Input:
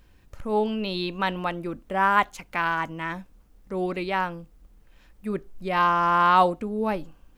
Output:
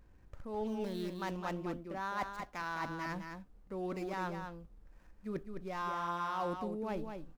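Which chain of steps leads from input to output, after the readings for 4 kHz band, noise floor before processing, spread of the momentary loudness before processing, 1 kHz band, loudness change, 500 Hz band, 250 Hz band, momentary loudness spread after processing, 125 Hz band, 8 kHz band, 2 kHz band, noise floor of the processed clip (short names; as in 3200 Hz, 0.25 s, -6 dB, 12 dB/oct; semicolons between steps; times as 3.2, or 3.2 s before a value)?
-16.0 dB, -58 dBFS, 14 LU, -16.0 dB, -14.5 dB, -12.0 dB, -10.0 dB, 10 LU, -9.5 dB, n/a, -15.5 dB, -61 dBFS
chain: median filter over 15 samples; reverse; compressor 5:1, threshold -31 dBFS, peak gain reduction 15.5 dB; reverse; echo 0.209 s -6.5 dB; gain -5 dB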